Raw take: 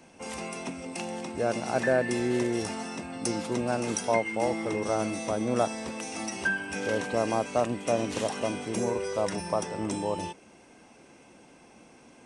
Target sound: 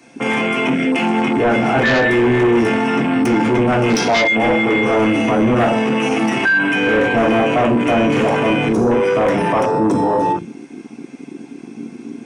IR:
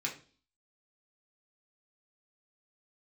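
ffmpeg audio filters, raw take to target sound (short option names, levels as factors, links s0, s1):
-filter_complex "[1:a]atrim=start_sample=2205[s0];[0:a][s0]afir=irnorm=-1:irlink=0,asplit=2[s1][s2];[s2]aeval=exprs='0.299*sin(PI/2*3.98*val(0)/0.299)':c=same,volume=0.447[s3];[s1][s3]amix=inputs=2:normalize=0,afwtdn=0.0447,alimiter=level_in=10:limit=0.891:release=50:level=0:latency=1,volume=0.376"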